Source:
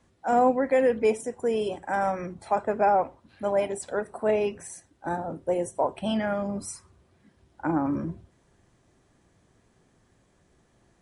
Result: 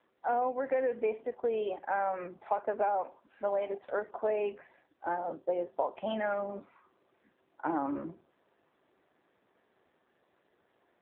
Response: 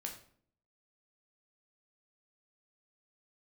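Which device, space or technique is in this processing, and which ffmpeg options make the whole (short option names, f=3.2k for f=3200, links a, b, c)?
voicemail: -af "highpass=400,lowpass=2.7k,acompressor=threshold=-26dB:ratio=6" -ar 8000 -c:a libopencore_amrnb -b:a 7400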